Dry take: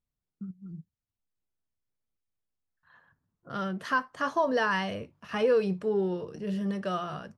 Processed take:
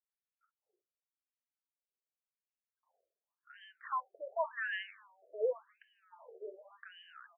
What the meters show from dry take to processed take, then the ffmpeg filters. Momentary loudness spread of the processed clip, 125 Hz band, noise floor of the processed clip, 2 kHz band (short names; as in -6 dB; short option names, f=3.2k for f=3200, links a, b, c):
18 LU, under -40 dB, under -85 dBFS, -9.5 dB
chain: -filter_complex "[0:a]asplit=2[a][b];[b]adelay=349.9,volume=-26dB,highshelf=f=4k:g=-7.87[c];[a][c]amix=inputs=2:normalize=0,afftfilt=real='re*between(b*sr/1024,480*pow(2300/480,0.5+0.5*sin(2*PI*0.89*pts/sr))/1.41,480*pow(2300/480,0.5+0.5*sin(2*PI*0.89*pts/sr))*1.41)':imag='im*between(b*sr/1024,480*pow(2300/480,0.5+0.5*sin(2*PI*0.89*pts/sr))/1.41,480*pow(2300/480,0.5+0.5*sin(2*PI*0.89*pts/sr))*1.41)':win_size=1024:overlap=0.75,volume=-6.5dB"